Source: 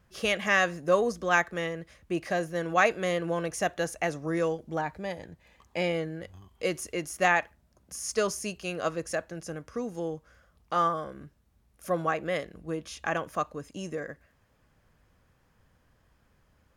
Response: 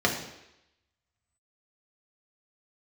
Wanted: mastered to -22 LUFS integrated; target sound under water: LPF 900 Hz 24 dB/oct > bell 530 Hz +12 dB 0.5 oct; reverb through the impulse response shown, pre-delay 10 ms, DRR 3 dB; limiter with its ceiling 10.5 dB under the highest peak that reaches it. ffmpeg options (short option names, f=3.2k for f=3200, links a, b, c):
-filter_complex "[0:a]alimiter=limit=-19dB:level=0:latency=1,asplit=2[a][b];[1:a]atrim=start_sample=2205,adelay=10[c];[b][c]afir=irnorm=-1:irlink=0,volume=-17dB[d];[a][d]amix=inputs=2:normalize=0,lowpass=f=900:w=0.5412,lowpass=f=900:w=1.3066,equalizer=f=530:t=o:w=0.5:g=12,volume=2dB"